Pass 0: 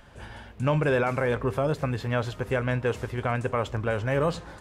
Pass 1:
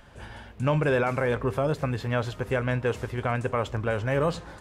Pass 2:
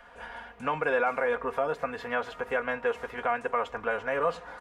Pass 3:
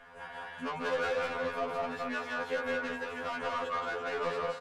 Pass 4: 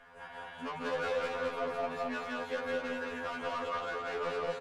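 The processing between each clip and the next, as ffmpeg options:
-af anull
-filter_complex "[0:a]acrossover=split=510 2400:gain=0.141 1 0.224[a][b][c];[a][b][c]amix=inputs=3:normalize=0,aecho=1:1:4.2:0.77,asplit=2[d][e];[e]acompressor=threshold=-36dB:ratio=6,volume=-1.5dB[f];[d][f]amix=inputs=2:normalize=0,volume=-1.5dB"
-af "aecho=1:1:174.9|218.7:0.794|0.562,asoftclip=type=tanh:threshold=-27dB,afftfilt=real='re*2*eq(mod(b,4),0)':imag='im*2*eq(mod(b,4),0)':win_size=2048:overlap=0.75"
-af "aecho=1:1:219:0.596,volume=-3dB"

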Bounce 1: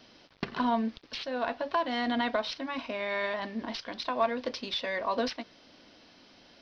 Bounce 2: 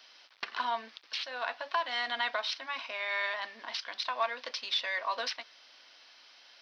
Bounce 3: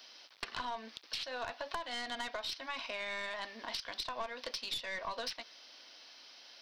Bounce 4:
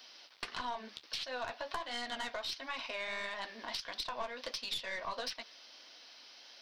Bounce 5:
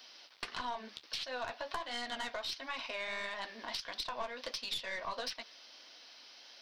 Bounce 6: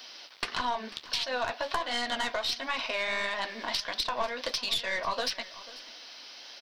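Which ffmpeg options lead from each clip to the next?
-af "highpass=1.1k,volume=2.5dB"
-af "aeval=exprs='0.158*(cos(1*acos(clip(val(0)/0.158,-1,1)))-cos(1*PI/2))+0.0158*(cos(4*acos(clip(val(0)/0.158,-1,1)))-cos(4*PI/2))+0.02*(cos(5*acos(clip(val(0)/0.158,-1,1)))-cos(5*PI/2))':c=same,equalizer=f=1.6k:w=0.4:g=-9,acompressor=threshold=-39dB:ratio=6,volume=3dB"
-af "flanger=delay=3.9:depth=9.3:regen=-44:speed=1.5:shape=sinusoidal,volume=4dB"
-af anull
-af "aecho=1:1:492:0.119,volume=8.5dB"

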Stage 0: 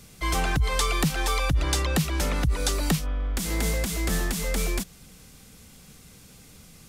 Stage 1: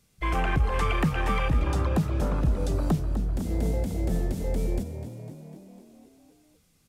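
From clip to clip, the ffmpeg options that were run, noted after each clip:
-filter_complex "[0:a]afwtdn=0.0355,asplit=2[a][b];[b]asplit=7[c][d][e][f][g][h][i];[c]adelay=251,afreqshift=37,volume=-11dB[j];[d]adelay=502,afreqshift=74,volume=-15.3dB[k];[e]adelay=753,afreqshift=111,volume=-19.6dB[l];[f]adelay=1004,afreqshift=148,volume=-23.9dB[m];[g]adelay=1255,afreqshift=185,volume=-28.2dB[n];[h]adelay=1506,afreqshift=222,volume=-32.5dB[o];[i]adelay=1757,afreqshift=259,volume=-36.8dB[p];[j][k][l][m][n][o][p]amix=inputs=7:normalize=0[q];[a][q]amix=inputs=2:normalize=0"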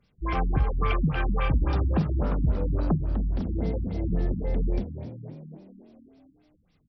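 -filter_complex "[0:a]asplit=2[a][b];[b]adelay=45,volume=-11.5dB[c];[a][c]amix=inputs=2:normalize=0,afftfilt=real='re*lt(b*sr/1024,290*pow(6000/290,0.5+0.5*sin(2*PI*3.6*pts/sr)))':imag='im*lt(b*sr/1024,290*pow(6000/290,0.5+0.5*sin(2*PI*3.6*pts/sr)))':win_size=1024:overlap=0.75"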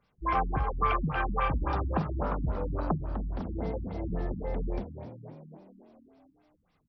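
-af "equalizer=f=1k:w=0.69:g=12.5,volume=-7.5dB"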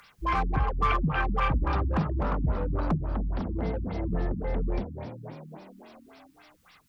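-filter_complex "[0:a]acrossover=split=310|1100[a][b][c];[b]asoftclip=type=tanh:threshold=-36.5dB[d];[c]acompressor=mode=upward:threshold=-46dB:ratio=2.5[e];[a][d][e]amix=inputs=3:normalize=0,volume=4dB"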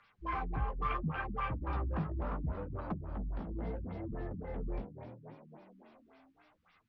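-af "lowpass=2.9k,flanger=delay=8.5:depth=10:regen=-13:speed=0.72:shape=sinusoidal,volume=-6.5dB"

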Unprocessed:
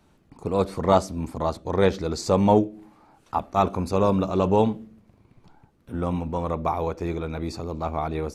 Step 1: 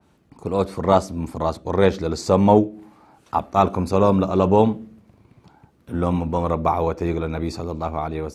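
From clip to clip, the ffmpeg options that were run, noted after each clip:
-af "highpass=52,dynaudnorm=f=200:g=9:m=4dB,adynamicequalizer=threshold=0.0126:dfrequency=2500:dqfactor=0.7:tfrequency=2500:tqfactor=0.7:attack=5:release=100:ratio=0.375:range=2:mode=cutabove:tftype=highshelf,volume=1.5dB"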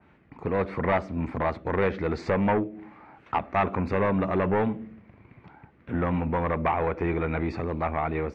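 -af "acompressor=threshold=-22dB:ratio=2,asoftclip=type=tanh:threshold=-18dB,lowpass=f=2.1k:t=q:w=2.9"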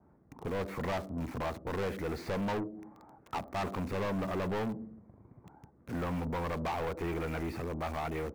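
-filter_complex "[0:a]acrossover=split=1200[a][b];[b]acrusher=bits=7:mix=0:aa=0.000001[c];[a][c]amix=inputs=2:normalize=0,asoftclip=type=tanh:threshold=-26.5dB,volume=-4dB"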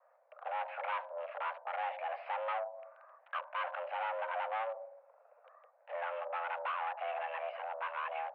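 -af "highpass=f=210:t=q:w=0.5412,highpass=f=210:t=q:w=1.307,lowpass=f=2.7k:t=q:w=0.5176,lowpass=f=2.7k:t=q:w=0.7071,lowpass=f=2.7k:t=q:w=1.932,afreqshift=340,volume=-2dB"

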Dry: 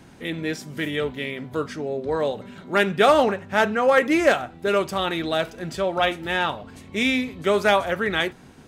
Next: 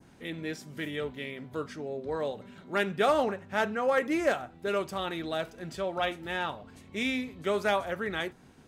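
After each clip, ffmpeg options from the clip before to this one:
-af "adynamicequalizer=threshold=0.0178:dfrequency=3000:dqfactor=0.9:tfrequency=3000:tqfactor=0.9:attack=5:release=100:ratio=0.375:range=2:mode=cutabove:tftype=bell,volume=-8.5dB"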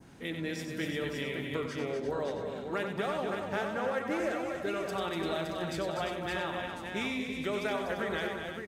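-af "acompressor=threshold=-34dB:ratio=6,aecho=1:1:93|189|244|343|567|666:0.447|0.133|0.473|0.355|0.501|0.178,volume=2dB"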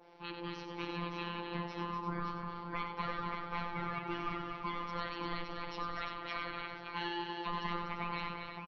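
-af "aresample=11025,aresample=44100,aeval=exprs='val(0)*sin(2*PI*630*n/s)':c=same,afftfilt=real='hypot(re,im)*cos(PI*b)':imag='0':win_size=1024:overlap=0.75,volume=1dB"

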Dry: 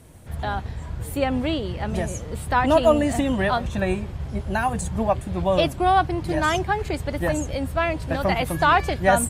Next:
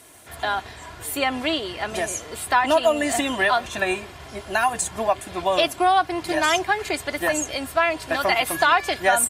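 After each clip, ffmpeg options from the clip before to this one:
-af "highpass=f=1.2k:p=1,aecho=1:1:2.9:0.43,acompressor=threshold=-24dB:ratio=2.5,volume=8dB"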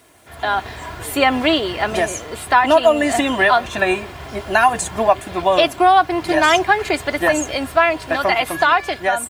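-af "highshelf=f=4.7k:g=-9,acrusher=bits=8:mix=0:aa=0.5,dynaudnorm=f=150:g=7:m=11.5dB"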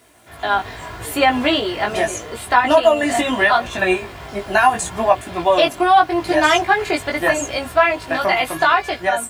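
-af "flanger=delay=16.5:depth=3.6:speed=0.78,volume=2.5dB"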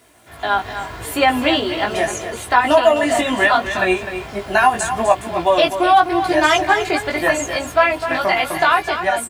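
-af "aecho=1:1:254:0.316"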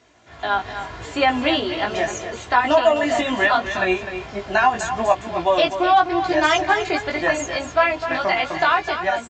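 -af "aresample=16000,aresample=44100,volume=-3dB"

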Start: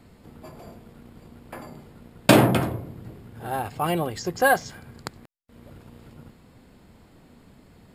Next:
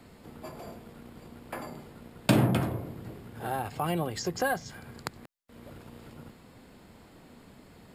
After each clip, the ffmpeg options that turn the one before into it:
-filter_complex "[0:a]lowshelf=f=190:g=-6.5,acrossover=split=220[a][b];[b]acompressor=threshold=-34dB:ratio=2.5[c];[a][c]amix=inputs=2:normalize=0,volume=2dB"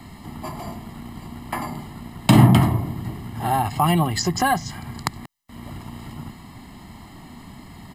-af "aecho=1:1:1:0.84,alimiter=level_in=10dB:limit=-1dB:release=50:level=0:latency=1,volume=-1dB"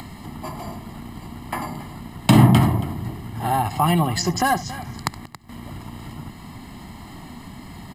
-af "aecho=1:1:70|277:0.119|0.158,acompressor=mode=upward:threshold=-32dB:ratio=2.5"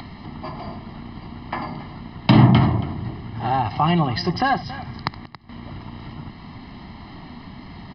-af "aresample=11025,aresample=44100"

